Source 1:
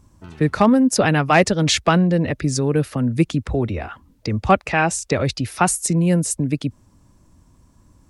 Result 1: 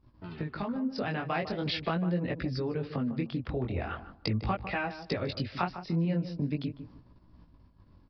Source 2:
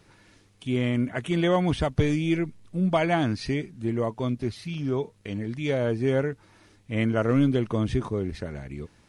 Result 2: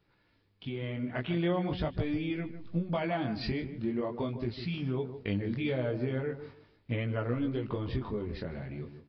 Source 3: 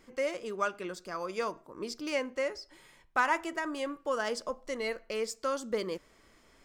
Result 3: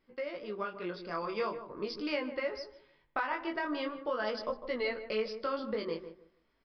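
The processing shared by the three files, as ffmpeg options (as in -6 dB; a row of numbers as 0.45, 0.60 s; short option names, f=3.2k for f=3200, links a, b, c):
-filter_complex "[0:a]agate=range=-11dB:threshold=-51dB:ratio=16:detection=peak,acompressor=threshold=-31dB:ratio=8,aresample=11025,aresample=44100,flanger=delay=16:depth=8:speed=0.42,dynaudnorm=f=140:g=13:m=5dB,asplit=2[a][b];[b]adelay=152,lowpass=f=1.1k:p=1,volume=-9.5dB,asplit=2[c][d];[d]adelay=152,lowpass=f=1.1k:p=1,volume=0.23,asplit=2[e][f];[f]adelay=152,lowpass=f=1.1k:p=1,volume=0.23[g];[a][c][e][g]amix=inputs=4:normalize=0"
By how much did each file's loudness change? -14.0, -7.5, -2.0 LU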